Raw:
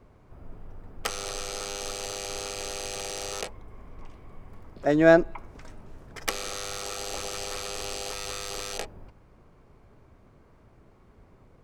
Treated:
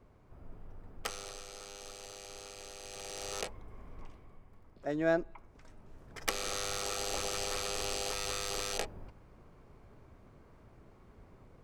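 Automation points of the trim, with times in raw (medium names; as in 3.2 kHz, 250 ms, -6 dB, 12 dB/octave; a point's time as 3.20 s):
0.96 s -6 dB
1.45 s -13.5 dB
2.79 s -13.5 dB
3.41 s -4 dB
4.02 s -4 dB
4.48 s -12.5 dB
5.52 s -12.5 dB
6.53 s -1.5 dB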